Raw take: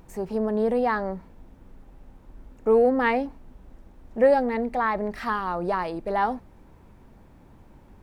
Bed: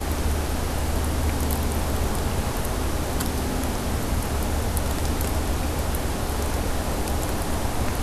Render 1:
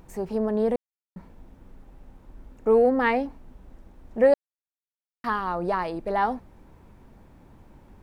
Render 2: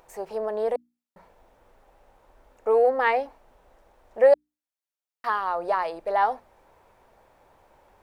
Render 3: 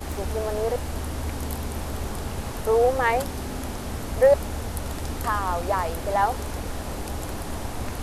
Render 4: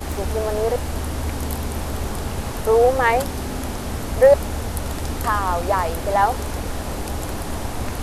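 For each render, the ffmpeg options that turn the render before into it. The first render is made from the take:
ffmpeg -i in.wav -filter_complex "[0:a]asplit=5[link_01][link_02][link_03][link_04][link_05];[link_01]atrim=end=0.76,asetpts=PTS-STARTPTS,afade=type=out:start_time=0.756:duration=0.004:curve=hsin[link_06];[link_02]atrim=start=0.76:end=1.16,asetpts=PTS-STARTPTS,volume=0[link_07];[link_03]atrim=start=1.16:end=4.34,asetpts=PTS-STARTPTS,afade=type=in:duration=0.004:curve=hsin,afade=type=out:start_time=3.176:duration=0.004:curve=hsin[link_08];[link_04]atrim=start=4.34:end=5.24,asetpts=PTS-STARTPTS,volume=0[link_09];[link_05]atrim=start=5.24,asetpts=PTS-STARTPTS,afade=type=in:duration=0.004:curve=hsin[link_10];[link_06][link_07][link_08][link_09][link_10]concat=n=5:v=0:a=1" out.wav
ffmpeg -i in.wav -af "lowshelf=frequency=370:width_type=q:width=1.5:gain=-14,bandreject=frequency=60:width_type=h:width=6,bandreject=frequency=120:width_type=h:width=6,bandreject=frequency=180:width_type=h:width=6,bandreject=frequency=240:width_type=h:width=6,bandreject=frequency=300:width_type=h:width=6" out.wav
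ffmpeg -i in.wav -i bed.wav -filter_complex "[1:a]volume=-6dB[link_01];[0:a][link_01]amix=inputs=2:normalize=0" out.wav
ffmpeg -i in.wav -af "volume=4.5dB" out.wav

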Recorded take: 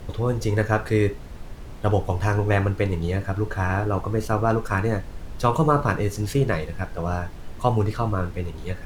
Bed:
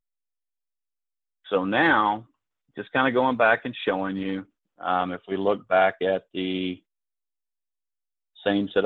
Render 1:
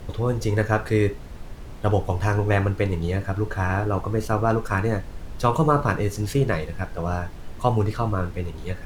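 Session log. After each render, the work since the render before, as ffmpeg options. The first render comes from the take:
ffmpeg -i in.wav -af anull out.wav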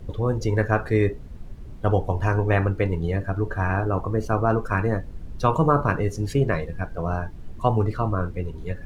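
ffmpeg -i in.wav -af "afftdn=noise_reduction=11:noise_floor=-37" out.wav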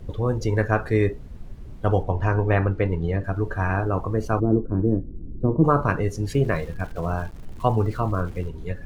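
ffmpeg -i in.wav -filter_complex "[0:a]asettb=1/sr,asplit=3[link_01][link_02][link_03];[link_01]atrim=end=2.034[link_04];[link_02]atrim=start=2.03:end=3.24,asetpts=PTS-STARTPTS,afade=type=in:duration=0.004:curve=qsin,afade=type=out:start_time=1.206:duration=0.004:curve=qsin,aemphasis=mode=reproduction:type=50fm[link_05];[link_03]atrim=start=3.236[link_06];[link_04][link_05]acrossfade=duration=0.004:curve1=hsin:curve2=qsin[link_07];[link_07][link_06]acrossfade=duration=0.004:curve1=qsin:curve2=hsin,asplit=3[link_08][link_09][link_10];[link_08]afade=type=out:start_time=4.39:duration=0.02[link_11];[link_09]lowpass=frequency=320:width_type=q:width=2.8,afade=type=in:start_time=4.39:duration=0.02,afade=type=out:start_time=5.63:duration=0.02[link_12];[link_10]afade=type=in:start_time=5.63:duration=0.02[link_13];[link_11][link_12][link_13]amix=inputs=3:normalize=0,asettb=1/sr,asplit=3[link_14][link_15][link_16];[link_14]atrim=end=6.344[link_17];[link_15]atrim=start=6.34:end=8.48,asetpts=PTS-STARTPTS,afade=type=in:duration=0.004:curve=qsin,afade=type=out:start_time=2.136:duration=0.004:curve=qsin,aeval=exprs='val(0)*gte(abs(val(0)),0.0075)':channel_layout=same[link_18];[link_16]atrim=start=8.476[link_19];[link_17][link_18]acrossfade=duration=0.004:curve1=hsin:curve2=qsin[link_20];[link_20][link_19]acrossfade=duration=0.004:curve1=qsin:curve2=hsin" out.wav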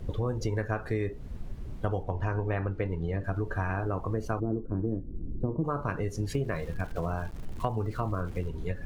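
ffmpeg -i in.wav -af "acompressor=threshold=-27dB:ratio=6" out.wav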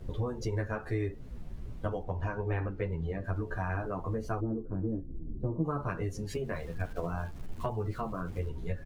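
ffmpeg -i in.wav -filter_complex "[0:a]asplit=2[link_01][link_02];[link_02]adelay=11,afreqshift=-2.6[link_03];[link_01][link_03]amix=inputs=2:normalize=1" out.wav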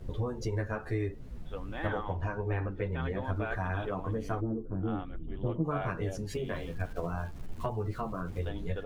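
ffmpeg -i in.wav -i bed.wav -filter_complex "[1:a]volume=-19dB[link_01];[0:a][link_01]amix=inputs=2:normalize=0" out.wav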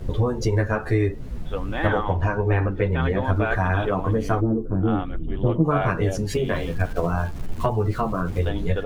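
ffmpeg -i in.wav -af "volume=11.5dB" out.wav

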